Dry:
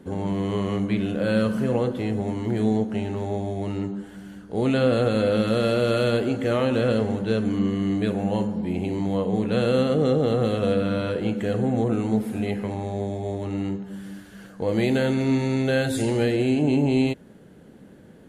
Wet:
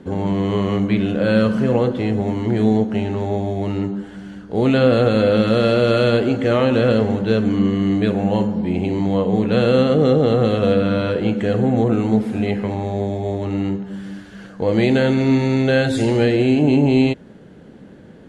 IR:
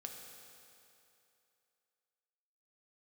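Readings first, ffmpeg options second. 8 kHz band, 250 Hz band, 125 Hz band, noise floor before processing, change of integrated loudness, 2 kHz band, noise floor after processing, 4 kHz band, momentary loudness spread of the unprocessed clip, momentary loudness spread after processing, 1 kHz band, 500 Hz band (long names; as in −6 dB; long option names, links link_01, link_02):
can't be measured, +6.0 dB, +6.0 dB, −48 dBFS, +6.0 dB, +6.0 dB, −42 dBFS, +5.5 dB, 8 LU, 8 LU, +6.0 dB, +6.0 dB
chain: -af "lowpass=6000,volume=6dB"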